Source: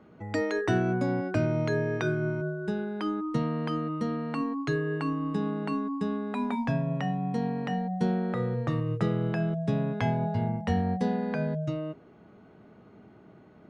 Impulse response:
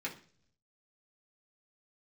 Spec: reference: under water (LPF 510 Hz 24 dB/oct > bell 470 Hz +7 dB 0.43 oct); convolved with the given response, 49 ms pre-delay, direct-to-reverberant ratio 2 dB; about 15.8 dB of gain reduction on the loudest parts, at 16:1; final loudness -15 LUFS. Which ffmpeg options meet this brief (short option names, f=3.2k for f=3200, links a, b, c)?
-filter_complex "[0:a]acompressor=threshold=-38dB:ratio=16,asplit=2[a][b];[1:a]atrim=start_sample=2205,adelay=49[c];[b][c]afir=irnorm=-1:irlink=0,volume=-4dB[d];[a][d]amix=inputs=2:normalize=0,lowpass=f=510:w=0.5412,lowpass=f=510:w=1.3066,equalizer=f=470:t=o:w=0.43:g=7,volume=24.5dB"